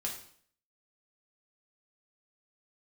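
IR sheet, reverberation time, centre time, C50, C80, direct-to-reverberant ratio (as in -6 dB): 0.55 s, 26 ms, 6.5 dB, 10.0 dB, -2.0 dB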